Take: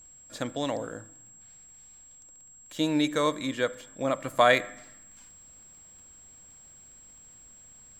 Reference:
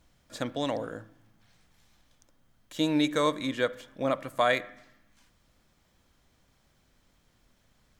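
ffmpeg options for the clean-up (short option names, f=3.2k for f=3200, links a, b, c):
-af "adeclick=t=4,bandreject=f=7.6k:w=30,asetnsamples=n=441:p=0,asendcmd='4.24 volume volume -4.5dB',volume=0dB"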